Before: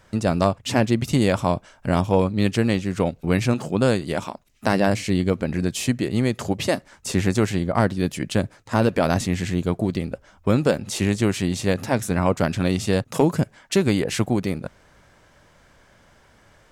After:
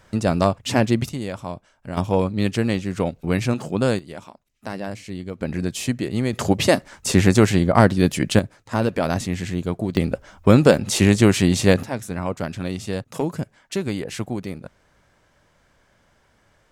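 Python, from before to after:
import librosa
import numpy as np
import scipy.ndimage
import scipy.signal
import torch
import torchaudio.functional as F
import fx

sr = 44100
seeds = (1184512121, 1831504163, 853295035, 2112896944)

y = fx.gain(x, sr, db=fx.steps((0.0, 1.0), (1.09, -10.0), (1.97, -1.0), (3.99, -11.0), (5.41, -1.5), (6.33, 5.5), (8.39, -2.0), (9.97, 6.0), (11.83, -6.0)))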